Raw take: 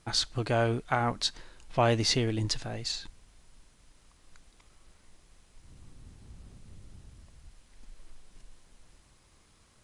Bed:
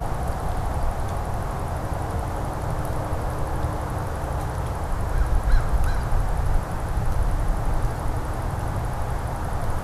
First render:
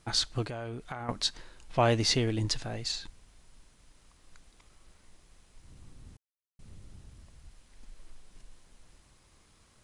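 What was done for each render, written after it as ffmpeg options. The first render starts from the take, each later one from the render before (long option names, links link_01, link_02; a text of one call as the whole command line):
ffmpeg -i in.wav -filter_complex "[0:a]asettb=1/sr,asplit=3[link_01][link_02][link_03];[link_01]atrim=end=0.444[link_04];[link_02]atrim=start=0.44:end=1.09,asetpts=PTS-STARTPTS,afade=type=in:duration=0.004:curve=qsin,afade=type=out:start_time=0.646:duration=0.004:curve=qsin,acompressor=threshold=-35dB:ratio=6:attack=3.2:release=140:knee=1:detection=peak[link_05];[link_03]atrim=start=1.086[link_06];[link_04][link_05]acrossfade=duration=0.004:curve1=hsin:curve2=qsin[link_07];[link_07][link_06]acrossfade=duration=0.004:curve1=qsin:curve2=hsin,asplit=3[link_08][link_09][link_10];[link_08]atrim=end=6.17,asetpts=PTS-STARTPTS,afade=type=out:start_time=6.166:duration=0.004:curve=hsin[link_11];[link_09]atrim=start=6.17:end=6.59,asetpts=PTS-STARTPTS,volume=0[link_12];[link_10]atrim=start=6.59,asetpts=PTS-STARTPTS,afade=type=in:duration=0.004:curve=hsin[link_13];[link_11][link_12][link_13]concat=n=3:v=0:a=1" out.wav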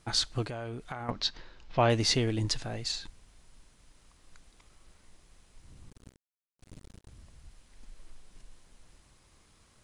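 ffmpeg -i in.wav -filter_complex "[0:a]asettb=1/sr,asplit=3[link_01][link_02][link_03];[link_01]atrim=end=1.104[link_04];[link_02]atrim=start=1.1:end=1.9,asetpts=PTS-STARTPTS,afade=type=in:duration=0.004:curve=qsin,afade=type=out:start_time=0.796:duration=0.004:curve=qsin,lowpass=frequency=5400:width=0.5412,lowpass=frequency=5400:width=1.3066[link_05];[link_03]atrim=start=1.896[link_06];[link_04][link_05]acrossfade=duration=0.004:curve1=hsin:curve2=qsin[link_07];[link_07][link_06]acrossfade=duration=0.004:curve1=qsin:curve2=hsin,asettb=1/sr,asplit=3[link_08][link_09][link_10];[link_08]atrim=end=5.904[link_11];[link_09]atrim=start=5.9:end=7.09,asetpts=PTS-STARTPTS,afade=type=in:duration=0.004:curve=qsin,afade=type=out:start_time=1.186:duration=0.004:curve=qsin,acrusher=bits=6:mix=0:aa=0.5[link_12];[link_10]atrim=start=7.086[link_13];[link_11][link_12]acrossfade=duration=0.004:curve1=hsin:curve2=qsin[link_14];[link_14][link_13]acrossfade=duration=0.004:curve1=qsin:curve2=hsin" out.wav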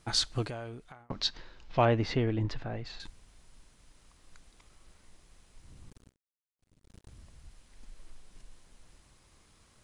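ffmpeg -i in.wav -filter_complex "[0:a]asettb=1/sr,asplit=3[link_01][link_02][link_03];[link_01]atrim=end=1.854[link_04];[link_02]atrim=start=1.85:end=3,asetpts=PTS-STARTPTS,afade=type=in:duration=0.004:curve=qsin,afade=type=out:start_time=1.146:duration=0.004:curve=qsin,lowpass=2100[link_05];[link_03]atrim=start=2.996[link_06];[link_04][link_05]acrossfade=duration=0.004:curve1=hsin:curve2=qsin[link_07];[link_07][link_06]acrossfade=duration=0.004:curve1=qsin:curve2=hsin,asplit=4[link_08][link_09][link_10][link_11];[link_08]atrim=end=1.1,asetpts=PTS-STARTPTS,afade=type=out:start_time=0.48:duration=0.62[link_12];[link_09]atrim=start=1.1:end=6.14,asetpts=PTS-STARTPTS,afade=type=in:duration=0.004:curve=hsin,afade=type=out:start_time=4.85:duration=0.19:silence=0.133352[link_13];[link_10]atrim=start=6.14:end=6.82,asetpts=PTS-STARTPTS,volume=-17.5dB[link_14];[link_11]atrim=start=6.82,asetpts=PTS-STARTPTS,afade=type=in:duration=0.19:silence=0.133352[link_15];[link_12][link_13][link_14][link_15]concat=n=4:v=0:a=1" out.wav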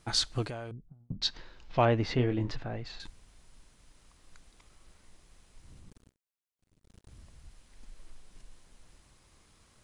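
ffmpeg -i in.wav -filter_complex "[0:a]asettb=1/sr,asplit=3[link_01][link_02][link_03];[link_01]atrim=end=0.714[link_04];[link_02]atrim=start=0.71:end=1.22,asetpts=PTS-STARTPTS,afade=type=in:duration=0.004:curve=qsin,afade=type=out:start_time=0.506:duration=0.004:curve=qsin,lowpass=frequency=170:width_type=q:width=1.6[link_05];[link_03]atrim=start=1.216[link_06];[link_04][link_05]acrossfade=duration=0.004:curve1=hsin:curve2=qsin[link_07];[link_07][link_06]acrossfade=duration=0.004:curve1=qsin:curve2=hsin,asettb=1/sr,asplit=3[link_08][link_09][link_10];[link_08]atrim=end=2.154[link_11];[link_09]atrim=start=2.15:end=2.56,asetpts=PTS-STARTPTS,afade=type=in:duration=0.004:curve=qsin,afade=type=out:start_time=0.406:duration=0.004:curve=qsin,asplit=2[link_12][link_13];[link_13]adelay=24,volume=-7.5dB[link_14];[link_12][link_14]amix=inputs=2:normalize=0,atrim=end_sample=18081[link_15];[link_10]atrim=start=2.556[link_16];[link_11][link_15]acrossfade=duration=0.004:curve1=hsin:curve2=qsin[link_17];[link_17][link_16]acrossfade=duration=0.004:curve1=qsin:curve2=hsin,asplit=3[link_18][link_19][link_20];[link_18]afade=type=out:start_time=5.79:duration=0.02[link_21];[link_19]tremolo=f=190:d=0.462,afade=type=in:start_time=5.79:duration=0.02,afade=type=out:start_time=7.09:duration=0.02[link_22];[link_20]afade=type=in:start_time=7.09:duration=0.02[link_23];[link_21][link_22][link_23]amix=inputs=3:normalize=0" out.wav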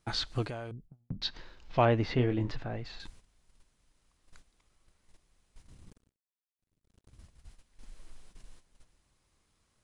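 ffmpeg -i in.wav -filter_complex "[0:a]agate=range=-11dB:threshold=-51dB:ratio=16:detection=peak,acrossover=split=4400[link_01][link_02];[link_02]acompressor=threshold=-54dB:ratio=4:attack=1:release=60[link_03];[link_01][link_03]amix=inputs=2:normalize=0" out.wav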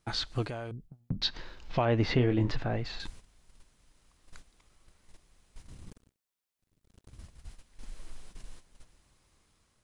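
ffmpeg -i in.wav -af "dynaudnorm=framelen=350:gausssize=5:maxgain=6dB,alimiter=limit=-16.5dB:level=0:latency=1:release=251" out.wav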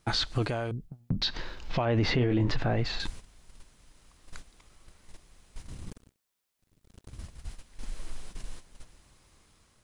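ffmpeg -i in.wav -af "acontrast=66,alimiter=limit=-18.5dB:level=0:latency=1:release=35" out.wav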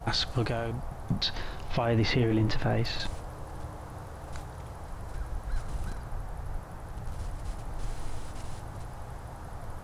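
ffmpeg -i in.wav -i bed.wav -filter_complex "[1:a]volume=-14.5dB[link_01];[0:a][link_01]amix=inputs=2:normalize=0" out.wav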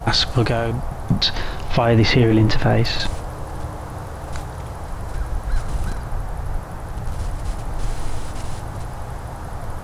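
ffmpeg -i in.wav -af "volume=11dB" out.wav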